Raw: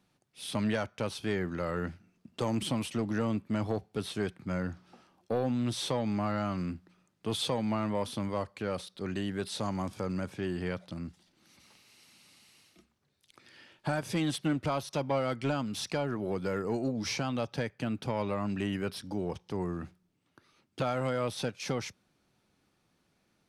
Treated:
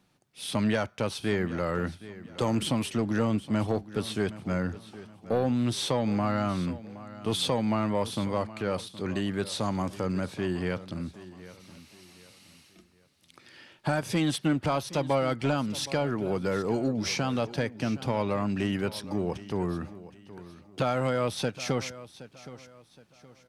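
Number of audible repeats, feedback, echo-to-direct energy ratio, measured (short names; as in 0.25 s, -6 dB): 3, 35%, -16.0 dB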